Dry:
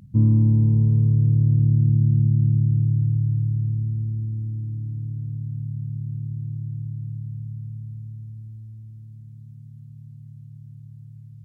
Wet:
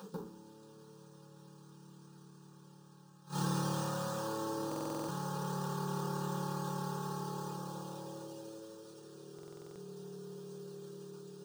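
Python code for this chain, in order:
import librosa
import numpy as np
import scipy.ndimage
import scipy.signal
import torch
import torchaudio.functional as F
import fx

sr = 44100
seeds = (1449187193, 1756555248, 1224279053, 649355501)

y = fx.law_mismatch(x, sr, coded='A')
y = fx.dereverb_blind(y, sr, rt60_s=0.65)
y = scipy.signal.sosfilt(scipy.signal.butter(4, 330.0, 'highpass', fs=sr, output='sos'), y)
y = fx.low_shelf(y, sr, hz=420.0, db=-5.0)
y = 10.0 ** (-36.5 / 20.0) * np.tanh(y / 10.0 ** (-36.5 / 20.0))
y = fx.gate_flip(y, sr, shuts_db=-44.0, range_db=-29)
y = fx.fixed_phaser(y, sr, hz=420.0, stages=8)
y = fx.rev_fdn(y, sr, rt60_s=0.46, lf_ratio=1.0, hf_ratio=0.7, size_ms=33.0, drr_db=-8.5)
y = np.repeat(scipy.signal.resample_poly(y, 1, 3), 3)[:len(y)]
y = fx.buffer_glitch(y, sr, at_s=(4.67, 9.34), block=2048, repeats=8)
y = F.gain(torch.from_numpy(y), 16.5).numpy()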